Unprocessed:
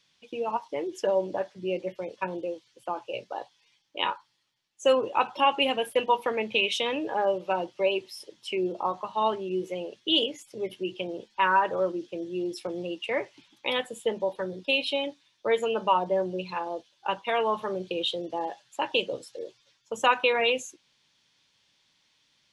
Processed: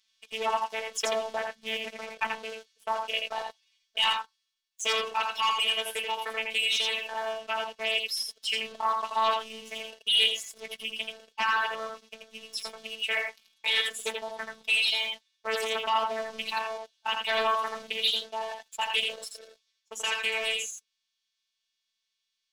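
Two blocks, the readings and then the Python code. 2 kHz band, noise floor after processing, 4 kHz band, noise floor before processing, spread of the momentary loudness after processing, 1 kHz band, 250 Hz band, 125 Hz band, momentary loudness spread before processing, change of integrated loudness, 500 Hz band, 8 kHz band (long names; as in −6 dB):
+2.0 dB, −82 dBFS, +4.5 dB, −69 dBFS, 13 LU, −2.5 dB, −16.0 dB, below −15 dB, 12 LU, −0.5 dB, −8.0 dB, +8.0 dB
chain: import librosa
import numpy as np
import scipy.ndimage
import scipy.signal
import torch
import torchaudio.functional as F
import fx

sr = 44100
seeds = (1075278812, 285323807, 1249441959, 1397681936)

y = fx.tone_stack(x, sr, knobs='10-0-10')
y = fx.leveller(y, sr, passes=3)
y = fx.rider(y, sr, range_db=5, speed_s=2.0)
y = fx.robotise(y, sr, hz=222.0)
y = 10.0 ** (-14.0 / 20.0) * np.tanh(y / 10.0 ** (-14.0 / 20.0))
y = y + 10.0 ** (-4.0 / 20.0) * np.pad(y, (int(83 * sr / 1000.0), 0))[:len(y)]
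y = fx.doppler_dist(y, sr, depth_ms=0.2)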